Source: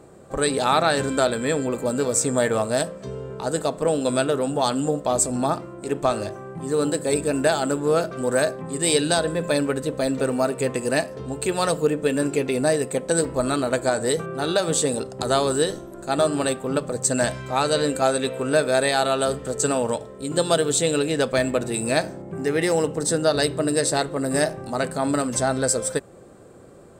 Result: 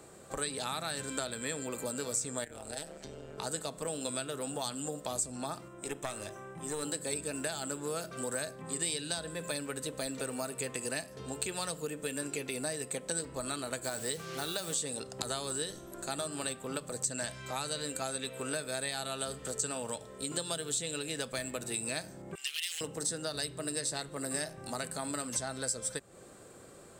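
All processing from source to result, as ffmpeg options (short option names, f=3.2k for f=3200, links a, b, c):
-filter_complex "[0:a]asettb=1/sr,asplit=3[a][b][c];[a]atrim=end=2.444[d];[b]atrim=start=2.44:end=3.38,asetpts=PTS-STARTPTS,afade=t=in:d=0.004:c=qsin,afade=t=out:st=0.936:d=0.004:c=qsin,acompressor=threshold=-31dB:ratio=2.5:attack=3.2:release=140:knee=1:detection=peak,tremolo=f=150:d=0.947,equalizer=f=1.1k:w=6.2:g=-9.5[e];[c]atrim=start=3.376[f];[d][e]acrossfade=d=0.004:c1=hsin:c2=qsin[g];[g][f]acrossfade=d=0.004:c1=qsin:c2=hsin,asettb=1/sr,asplit=3[h][i][j];[h]atrim=end=5.684[k];[i]atrim=start=5.68:end=6.83,asetpts=PTS-STARTPTS,afade=t=in:d=0.004:c=qsin,afade=t=out:st=1.146:d=0.004:c=qsin,aeval=exprs='(tanh(3.98*val(0)+0.65)-tanh(0.65))/3.98':c=same,asuperstop=centerf=4500:order=4:qfactor=6.7[l];[j]atrim=start=6.826[m];[k][l]acrossfade=d=0.004:c1=hsin:c2=qsin[n];[n][m]acrossfade=d=0.004:c1=qsin:c2=hsin,asettb=1/sr,asplit=3[o][p][q];[o]atrim=end=13.844[r];[p]atrim=start=13.84:end=14.74,asetpts=PTS-STARTPTS,afade=t=in:d=0.004:c=qsin,afade=t=out:st=0.896:d=0.004:c=qsin,lowpass=11k,acrusher=bits=5:mix=0:aa=0.5[s];[q]atrim=start=14.736[t];[r][s]acrossfade=d=0.004:c1=hsin:c2=qsin[u];[u][t]acrossfade=d=0.004:c1=qsin:c2=hsin,asettb=1/sr,asplit=3[v][w][x];[v]atrim=end=22.354[y];[w]atrim=start=22.35:end=22.81,asetpts=PTS-STARTPTS,afade=t=in:d=0.004:c=qsin,afade=t=out:st=0.456:d=0.004:c=qsin,aeval=exprs='0.158*(abs(mod(val(0)/0.158+3,4)-2)-1)':c=same,highpass=f=3k:t=q:w=5.4[z];[x]atrim=start=22.806[aa];[y][z]acrossfade=d=0.004:c1=hsin:c2=qsin[ab];[ab][aa]acrossfade=d=0.004:c1=qsin:c2=hsin,tiltshelf=f=1.4k:g=-6.5,acrossover=split=220|8000[ac][ad][ae];[ac]acompressor=threshold=-45dB:ratio=4[af];[ad]acompressor=threshold=-35dB:ratio=4[ag];[ae]acompressor=threshold=-41dB:ratio=4[ah];[af][ag][ah]amix=inputs=3:normalize=0,volume=-2dB"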